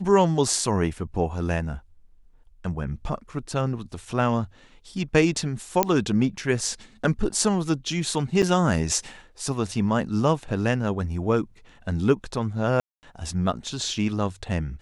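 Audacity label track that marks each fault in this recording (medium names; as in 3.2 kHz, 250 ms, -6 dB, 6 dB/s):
5.830000	5.830000	pop -3 dBFS
8.420000	8.430000	dropout 7.1 ms
12.800000	13.030000	dropout 229 ms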